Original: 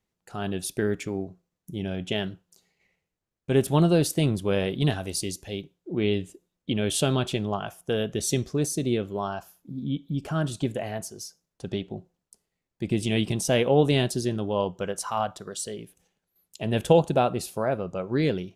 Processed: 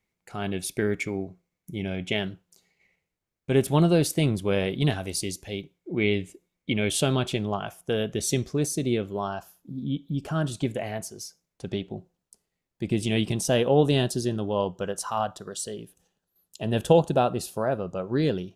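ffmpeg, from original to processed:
-af "asetnsamples=n=441:p=0,asendcmd='2.19 equalizer g 6;5.74 equalizer g 14.5;6.89 equalizer g 4;9.1 equalizer g -3.5;10.55 equalizer g 6.5;11.74 equalizer g 0;13.45 equalizer g -11.5',equalizer=f=2.2k:t=o:w=0.2:g=14"

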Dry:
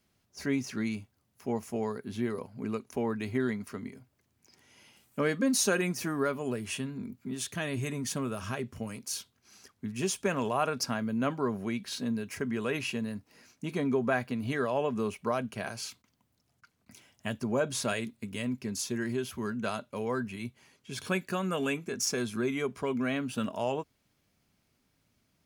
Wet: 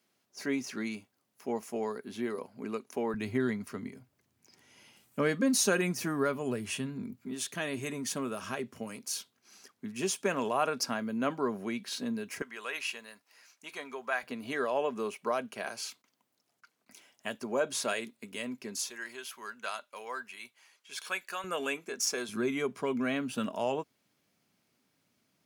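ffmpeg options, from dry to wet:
-af "asetnsamples=n=441:p=0,asendcmd='3.14 highpass f 99;7.25 highpass f 220;12.42 highpass f 880;14.23 highpass f 330;18.9 highpass f 890;21.44 highpass f 420;22.29 highpass f 170',highpass=260"

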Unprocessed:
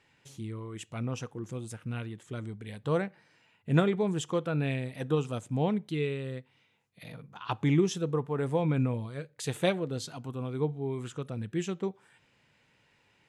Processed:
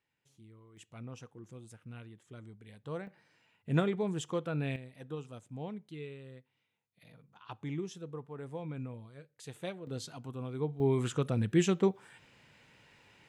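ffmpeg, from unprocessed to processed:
-af "asetnsamples=n=441:p=0,asendcmd='0.77 volume volume -11.5dB;3.07 volume volume -4.5dB;4.76 volume volume -13dB;9.87 volume volume -4.5dB;10.8 volume volume 5.5dB',volume=-18dB"

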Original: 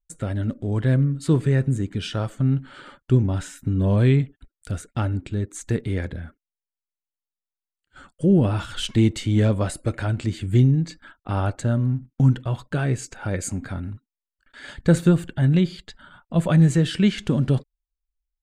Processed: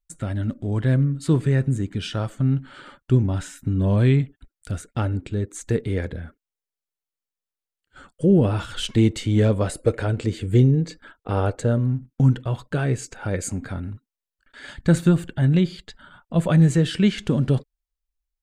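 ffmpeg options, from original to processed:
-af "asetnsamples=n=441:p=0,asendcmd='0.65 equalizer g -1.5;4.87 equalizer g 6;9.71 equalizer g 14.5;11.78 equalizer g 4;14.66 equalizer g -6;15.16 equalizer g 2.5',equalizer=f=460:t=o:w=0.38:g=-8"

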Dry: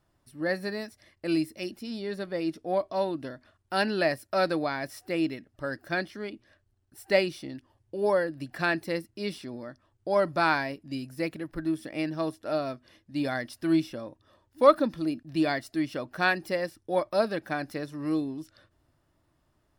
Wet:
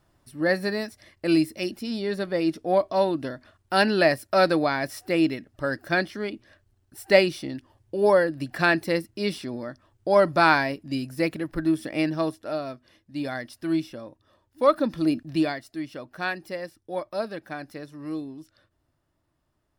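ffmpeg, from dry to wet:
-af "volume=15dB,afade=t=out:st=12.07:d=0.49:silence=0.446684,afade=t=in:st=14.74:d=0.44:silence=0.354813,afade=t=out:st=15.18:d=0.37:silence=0.251189"

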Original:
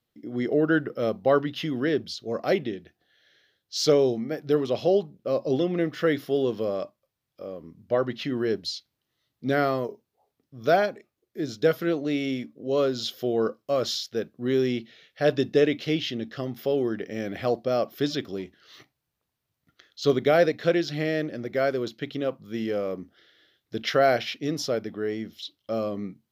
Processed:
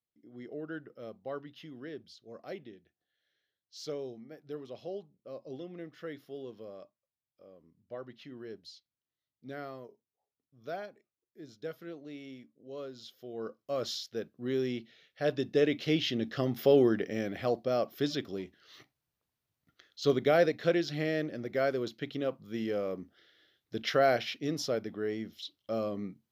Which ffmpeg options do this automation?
-af "volume=2.5dB,afade=t=in:st=13.28:d=0.54:silence=0.298538,afade=t=in:st=15.45:d=1.32:silence=0.298538,afade=t=out:st=16.77:d=0.58:silence=0.421697"

